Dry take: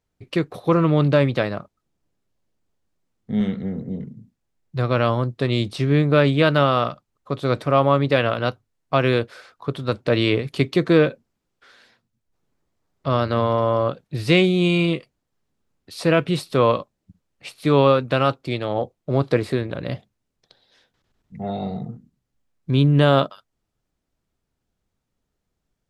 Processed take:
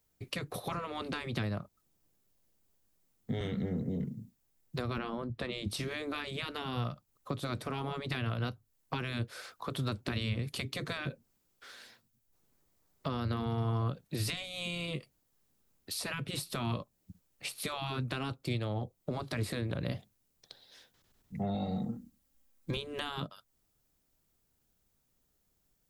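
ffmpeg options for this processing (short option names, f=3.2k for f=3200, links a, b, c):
-filter_complex "[0:a]asettb=1/sr,asplit=3[a][b][c];[a]atrim=end=4.984[d];[b]atrim=start=4.98:end=5.68,asetpts=PTS-STARTPTS,afade=t=in:d=0.004:c=qsin,afade=t=out:st=0.696:d=0.004:c=qsin,bass=f=250:g=5,treble=f=4k:g=-11[e];[c]atrim=start=5.676[f];[d][e]acrossfade=d=0.004:c1=hsin:c2=qsin[g];[g][f]acrossfade=d=0.004:c1=qsin:c2=hsin,asettb=1/sr,asplit=3[h][i][j];[h]atrim=end=21.544[k];[i]atrim=start=21.54:end=22.77,asetpts=PTS-STARTPTS,afade=t=in:d=0.004:c=qsin,afade=t=out:st=1.226:d=0.004:c=qsin,aecho=1:1:3.7:0.65,atrim=end_sample=54243[l];[j]atrim=start=22.766[m];[k][l]acrossfade=d=0.004:c1=hsin:c2=qsin[n];[n][m]acrossfade=d=0.004:c1=qsin:c2=hsin,aemphasis=mode=production:type=50fm,afftfilt=real='re*lt(hypot(re,im),0.501)':imag='im*lt(hypot(re,im),0.501)':win_size=1024:overlap=0.75,acrossover=split=190[o][p];[p]acompressor=threshold=-34dB:ratio=10[q];[o][q]amix=inputs=2:normalize=0,volume=-1.5dB"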